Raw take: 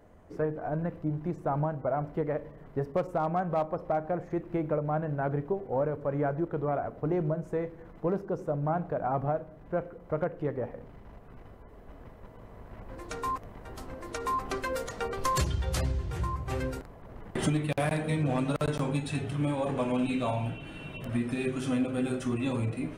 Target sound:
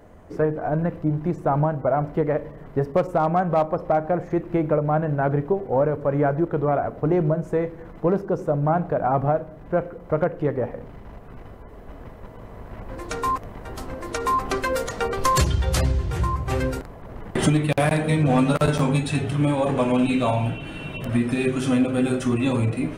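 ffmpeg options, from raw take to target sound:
ffmpeg -i in.wav -filter_complex "[0:a]asettb=1/sr,asplit=3[link_01][link_02][link_03];[link_01]atrim=end=18.264[link_04];[link_02]atrim=start=18.26:end=19.03,asetpts=PTS-STARTPTS,afade=type=in:duration=0.004:curve=qsin,afade=type=out:start_time=0.766:duration=0.004:curve=qsin,asplit=2[link_05][link_06];[link_06]adelay=12,volume=-5dB[link_07];[link_05][link_07]amix=inputs=2:normalize=0,atrim=end_sample=33957[link_08];[link_03]atrim=start=19.026[link_09];[link_04][link_08]acrossfade=duration=0.004:curve1=hsin:curve2=qsin[link_10];[link_10][link_09]acrossfade=duration=0.004:curve1=qsin:curve2=hsin,volume=8.5dB" out.wav

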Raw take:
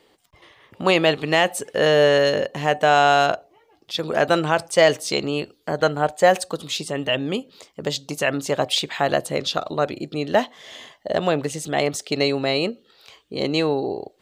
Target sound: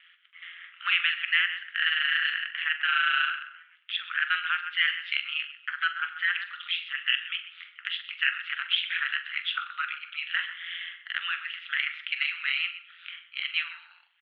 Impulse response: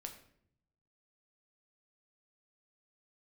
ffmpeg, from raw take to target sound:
-filter_complex "[0:a]asplit=2[link_01][link_02];[link_02]adelay=126,lowpass=frequency=2400:poles=1,volume=-14dB,asplit=2[link_03][link_04];[link_04]adelay=126,lowpass=frequency=2400:poles=1,volume=0.28,asplit=2[link_05][link_06];[link_06]adelay=126,lowpass=frequency=2400:poles=1,volume=0.28[link_07];[link_01][link_03][link_05][link_07]amix=inputs=4:normalize=0,acontrast=36,asplit=2[link_08][link_09];[1:a]atrim=start_sample=2205,atrim=end_sample=6174[link_10];[link_09][link_10]afir=irnorm=-1:irlink=0,volume=5.5dB[link_11];[link_08][link_11]amix=inputs=2:normalize=0,aeval=exprs='val(0)*sin(2*PI*86*n/s)':channel_layout=same,asuperpass=centerf=2100:order=12:qfactor=1.1,acompressor=threshold=-36dB:ratio=1.5,asplit=2[link_12][link_13];[link_13]adelay=44,volume=-13dB[link_14];[link_12][link_14]amix=inputs=2:normalize=0"

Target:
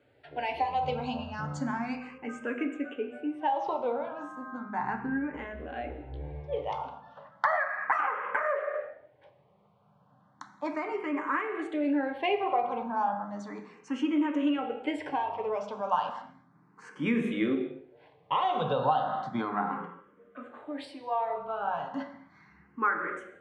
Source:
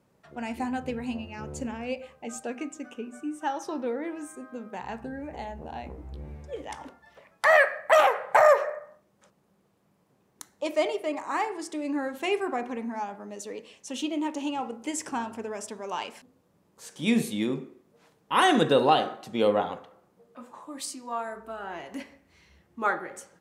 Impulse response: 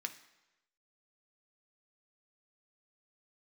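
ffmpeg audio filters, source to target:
-filter_complex "[1:a]atrim=start_sample=2205,afade=type=out:start_time=0.21:duration=0.01,atrim=end_sample=9702,asetrate=26460,aresample=44100[link_01];[0:a][link_01]afir=irnorm=-1:irlink=0,acompressor=threshold=-26dB:ratio=16,asetnsamples=nb_out_samples=441:pad=0,asendcmd='2.18 lowpass f 2100',lowpass=3800,asplit=2[link_02][link_03];[link_03]afreqshift=0.34[link_04];[link_02][link_04]amix=inputs=2:normalize=1,volume=6dB"

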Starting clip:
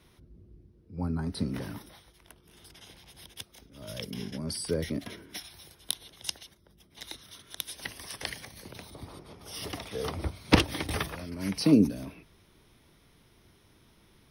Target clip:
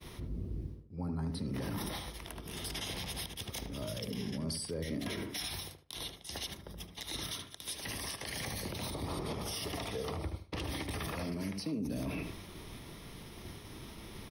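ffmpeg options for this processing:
ffmpeg -i in.wav -filter_complex "[0:a]areverse,acompressor=threshold=-46dB:ratio=10,areverse,agate=range=-33dB:threshold=-58dB:ratio=3:detection=peak,asplit=2[link_01][link_02];[link_02]adelay=75,lowpass=frequency=1500:poles=1,volume=-6dB,asplit=2[link_03][link_04];[link_04]adelay=75,lowpass=frequency=1500:poles=1,volume=0.25,asplit=2[link_05][link_06];[link_06]adelay=75,lowpass=frequency=1500:poles=1,volume=0.25[link_07];[link_03][link_05][link_07]amix=inputs=3:normalize=0[link_08];[link_01][link_08]amix=inputs=2:normalize=0,alimiter=level_in=18.5dB:limit=-24dB:level=0:latency=1:release=62,volume=-18.5dB,bandreject=frequency=1500:width=9.5,volume=14dB" out.wav

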